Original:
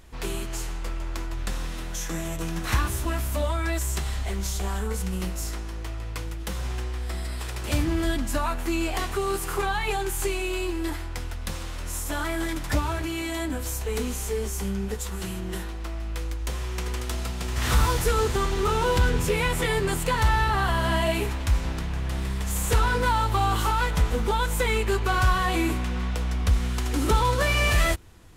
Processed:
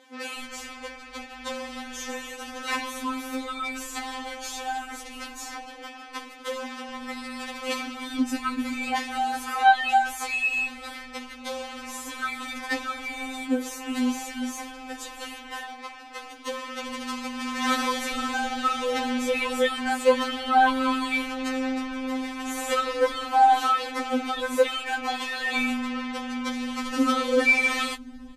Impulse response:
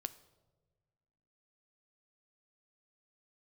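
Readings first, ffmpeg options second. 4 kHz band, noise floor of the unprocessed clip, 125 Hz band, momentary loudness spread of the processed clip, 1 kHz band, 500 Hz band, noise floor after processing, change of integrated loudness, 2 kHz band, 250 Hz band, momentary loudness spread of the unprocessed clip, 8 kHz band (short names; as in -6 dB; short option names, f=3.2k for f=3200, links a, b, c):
+0.5 dB, -33 dBFS, under -30 dB, 16 LU, +3.5 dB, -0.5 dB, -43 dBFS, 0.0 dB, +2.0 dB, +1.5 dB, 11 LU, -4.5 dB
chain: -filter_complex "[0:a]aemphasis=mode=reproduction:type=50fm,acrossover=split=210[a][b];[a]adelay=380[c];[c][b]amix=inputs=2:normalize=0,afftfilt=real='re*3.46*eq(mod(b,12),0)':imag='im*3.46*eq(mod(b,12),0)':win_size=2048:overlap=0.75,volume=6.5dB"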